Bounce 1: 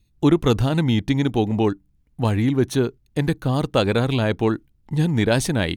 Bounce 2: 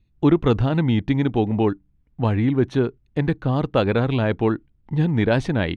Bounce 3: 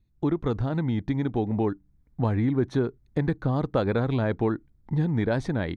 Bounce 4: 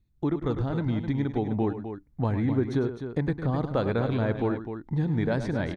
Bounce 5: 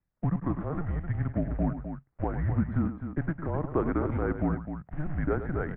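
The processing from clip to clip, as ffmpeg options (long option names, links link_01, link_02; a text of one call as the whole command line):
ffmpeg -i in.wav -af "lowpass=2700" out.wav
ffmpeg -i in.wav -af "dynaudnorm=framelen=570:gausssize=5:maxgain=11.5dB,equalizer=frequency=2800:width_type=o:width=0.39:gain=-12,acompressor=threshold=-20dB:ratio=2,volume=-4.5dB" out.wav
ffmpeg -i in.wav -af "aecho=1:1:102|256.6:0.282|0.355,volume=-2dB" out.wav
ffmpeg -i in.wav -af "acrusher=bits=5:mode=log:mix=0:aa=0.000001,highpass=frequency=190:width_type=q:width=0.5412,highpass=frequency=190:width_type=q:width=1.307,lowpass=frequency=2100:width_type=q:width=0.5176,lowpass=frequency=2100:width_type=q:width=0.7071,lowpass=frequency=2100:width_type=q:width=1.932,afreqshift=-160" out.wav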